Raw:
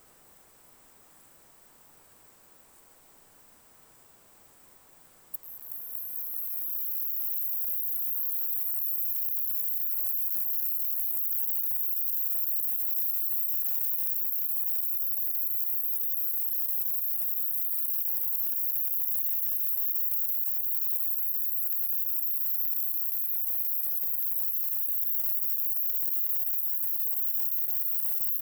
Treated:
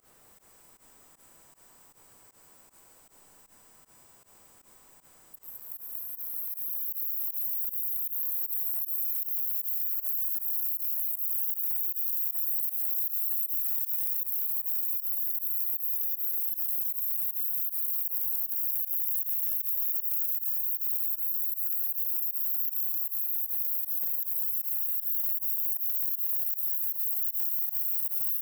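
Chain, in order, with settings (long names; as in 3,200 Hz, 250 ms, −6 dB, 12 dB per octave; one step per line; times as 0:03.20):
echo machine with several playback heads 70 ms, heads second and third, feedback 49%, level −10 dB
fake sidechain pumping 156 BPM, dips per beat 1, −21 dB, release 83 ms
every ending faded ahead of time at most 450 dB per second
level −1.5 dB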